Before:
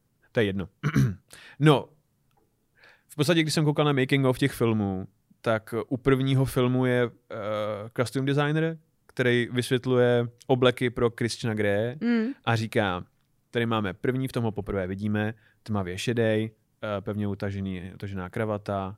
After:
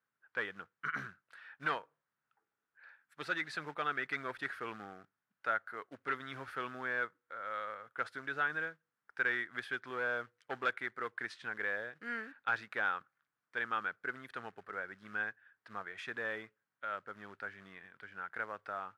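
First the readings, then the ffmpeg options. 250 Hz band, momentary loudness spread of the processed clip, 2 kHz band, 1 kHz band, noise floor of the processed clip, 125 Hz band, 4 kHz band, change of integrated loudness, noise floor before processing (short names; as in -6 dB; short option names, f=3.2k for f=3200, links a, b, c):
-25.0 dB, 12 LU, -3.0 dB, -6.5 dB, under -85 dBFS, -31.0 dB, -16.5 dB, -12.5 dB, -70 dBFS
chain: -af "acrusher=bits=6:mode=log:mix=0:aa=0.000001,asoftclip=type=hard:threshold=-15.5dB,bandpass=f=1.5k:t=q:w=3.1:csg=0"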